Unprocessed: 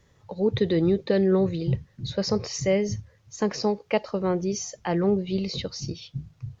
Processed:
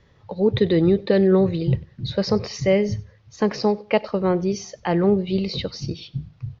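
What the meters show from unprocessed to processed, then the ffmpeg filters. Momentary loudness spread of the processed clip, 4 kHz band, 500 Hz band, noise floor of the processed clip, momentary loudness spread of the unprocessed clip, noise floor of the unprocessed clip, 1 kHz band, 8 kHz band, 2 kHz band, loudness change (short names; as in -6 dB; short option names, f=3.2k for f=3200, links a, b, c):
14 LU, +2.5 dB, +4.5 dB, -56 dBFS, 14 LU, -61 dBFS, +4.5 dB, n/a, +4.5 dB, +4.5 dB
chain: -af "lowpass=f=4.9k:w=0.5412,lowpass=f=4.9k:w=1.3066,aecho=1:1:96|192:0.0708|0.0177,volume=4.5dB"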